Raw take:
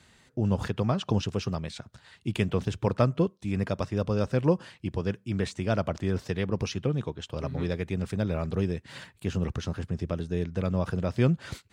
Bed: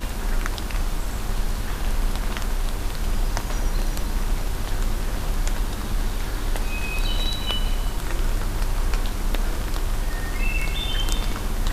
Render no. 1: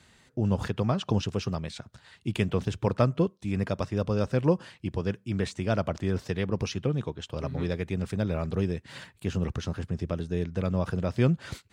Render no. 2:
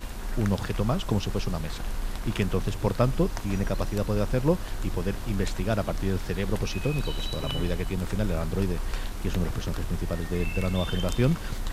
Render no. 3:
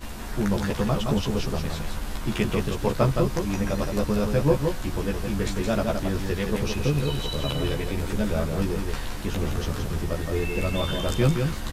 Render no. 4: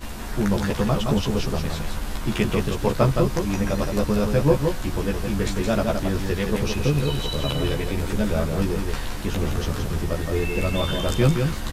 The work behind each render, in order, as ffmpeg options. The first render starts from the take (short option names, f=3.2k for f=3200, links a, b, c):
-af anull
-filter_complex "[1:a]volume=-8dB[a];[0:a][a]amix=inputs=2:normalize=0"
-filter_complex "[0:a]asplit=2[a][b];[b]adelay=14,volume=-2dB[c];[a][c]amix=inputs=2:normalize=0,asplit=2[d][e];[e]aecho=0:1:168:0.562[f];[d][f]amix=inputs=2:normalize=0"
-af "volume=2.5dB"